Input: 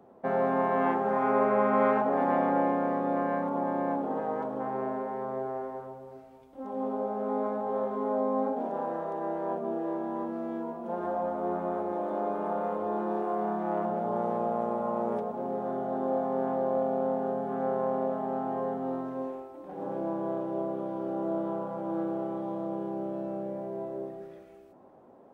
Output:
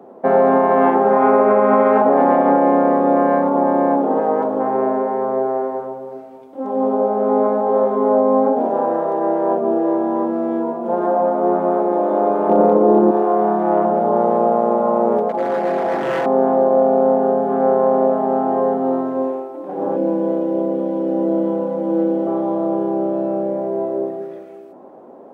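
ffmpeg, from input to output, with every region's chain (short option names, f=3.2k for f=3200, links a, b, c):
-filter_complex "[0:a]asettb=1/sr,asplit=3[a][b][c];[a]atrim=end=12.494[d];[b]atrim=start=12.49:end=13.11,asetpts=PTS-STARTPTS,afade=t=in:d=0.004:c=qsin,afade=t=out:st=0.616:d=0.004:c=qsin,asoftclip=type=hard:threshold=-22dB,equalizer=f=270:w=0.57:g=13[e];[c]atrim=start=13.106[f];[d][e]acrossfade=d=0.004:c1=hsin:c2=qsin[g];[g][f]acrossfade=d=0.004:c1=qsin:c2=hsin,asettb=1/sr,asplit=3[h][i][j];[h]atrim=end=15.294[k];[i]atrim=start=15.29:end=16.26,asetpts=PTS-STARTPTS,afade=t=in:d=0.004:c=qsin,afade=t=out:st=0.966:d=0.004:c=qsin,highpass=180,aeval=exprs='0.0335*(abs(mod(val(0)/0.0335+3,4)-2)-1)':c=same,aecho=1:1:6:0.57,atrim=end_sample=42777[l];[j]atrim=start=16.256[m];[k][l]acrossfade=d=0.004:c1=hsin:c2=qsin[n];[n][m]acrossfade=d=0.004:c1=qsin:c2=hsin,asettb=1/sr,asplit=3[o][p][q];[o]atrim=end=19.964[r];[p]atrim=start=19.96:end=22.27,asetpts=PTS-STARTPTS,afade=t=in:d=0.004:c=qsin,afade=t=out:st=2.306:d=0.004:c=qsin,asuperstop=centerf=730:order=4:qfactor=5.4,equalizer=f=1.1k:t=o:w=0.91:g=-12.5,aecho=1:1:4:0.75,atrim=end_sample=101871[s];[q]atrim=start=22.266[t];[r][s]acrossfade=d=0.004:c1=hsin:c2=qsin[u];[u][t]acrossfade=d=0.004:c1=qsin:c2=hsin,highpass=270,tiltshelf=f=1.1k:g=5.5,alimiter=level_in=15.5dB:limit=-1dB:release=50:level=0:latency=1,volume=-3.5dB"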